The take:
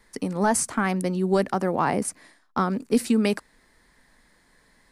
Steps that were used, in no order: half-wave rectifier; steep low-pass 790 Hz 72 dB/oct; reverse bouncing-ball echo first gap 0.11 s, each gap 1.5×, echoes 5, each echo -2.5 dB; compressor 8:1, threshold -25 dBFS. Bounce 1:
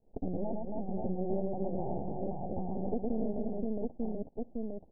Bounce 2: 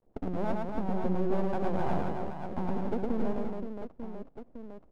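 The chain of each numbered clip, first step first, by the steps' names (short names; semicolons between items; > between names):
reverse bouncing-ball echo > compressor > half-wave rectifier > steep low-pass; steep low-pass > compressor > half-wave rectifier > reverse bouncing-ball echo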